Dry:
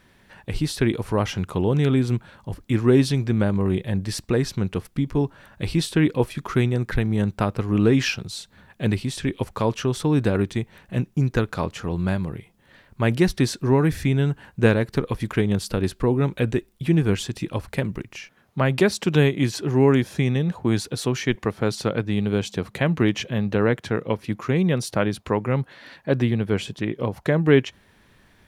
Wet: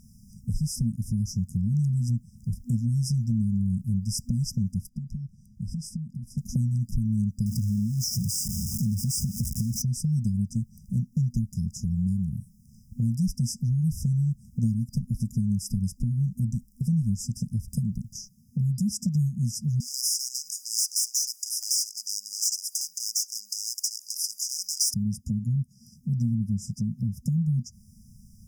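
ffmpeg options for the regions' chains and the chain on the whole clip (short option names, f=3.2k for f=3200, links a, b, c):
-filter_complex "[0:a]asettb=1/sr,asplit=3[a][b][c];[a]atrim=end=4.894[d];[b]atrim=start=4.89:end=6.38,asetpts=PTS-STARTPTS,afade=t=in:d=0.004:c=qsin,afade=t=out:st=1.486:d=0.004:c=qsin,lowpass=f=2k:p=1,acompressor=threshold=-28dB:ratio=12:attack=3.2:release=140:knee=1:detection=peak,lowshelf=f=180:g=-8[e];[c]atrim=start=6.376[f];[d][e]acrossfade=d=0.004:c1=hsin:c2=qsin[g];[g][f]acrossfade=d=0.004:c1=qsin:c2=hsin,asettb=1/sr,asplit=3[h][i][j];[h]atrim=end=7.464[k];[i]atrim=start=7.46:end=9.82,asetpts=PTS-STARTPTS,afade=t=in:d=0.004:c=qsin,afade=t=out:st=2.356:d=0.004:c=qsin,aeval=exprs='val(0)+0.5*0.0596*sgn(val(0))':c=same,highpass=41,acompressor=threshold=-19dB:ratio=4:attack=3.2:release=140:knee=1:detection=peak[l];[j]atrim=start=9.816[m];[k][l]acrossfade=d=0.004:c1=hsin:c2=qsin[n];[n][m]acrossfade=d=0.004:c1=qsin:c2=hsin,asettb=1/sr,asplit=3[o][p][q];[o]atrim=end=19.804[r];[p]atrim=start=19.8:end=24.94,asetpts=PTS-STARTPTS,afade=t=in:d=0.004:c=qsin,afade=t=out:st=5.136:d=0.004:c=qsin,highshelf=f=8.7k:g=2.5,asplit=2[s][t];[t]highpass=f=720:p=1,volume=36dB,asoftclip=type=tanh:threshold=-6dB[u];[s][u]amix=inputs=2:normalize=0,lowpass=f=3.7k:p=1,volume=-6dB,highpass=f=1.3k:w=0.5412,highpass=f=1.3k:w=1.3066[v];[q]atrim=start=24.936[w];[r][v]acrossfade=d=0.004:c1=hsin:c2=qsin[x];[x][w]acrossfade=d=0.004:c1=qsin:c2=hsin,afftfilt=real='re*(1-between(b*sr/4096,240,4900))':imag='im*(1-between(b*sr/4096,240,4900))':win_size=4096:overlap=0.75,acompressor=threshold=-35dB:ratio=2.5,volume=7.5dB"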